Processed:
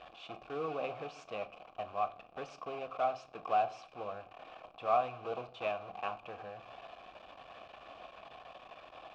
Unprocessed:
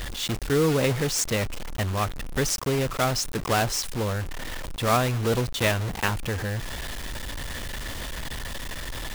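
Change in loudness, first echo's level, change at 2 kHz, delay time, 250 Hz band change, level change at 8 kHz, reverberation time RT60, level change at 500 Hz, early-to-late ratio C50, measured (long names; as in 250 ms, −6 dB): −11.5 dB, no echo audible, −18.0 dB, no echo audible, −22.5 dB, below −35 dB, 0.50 s, −11.0 dB, 18.0 dB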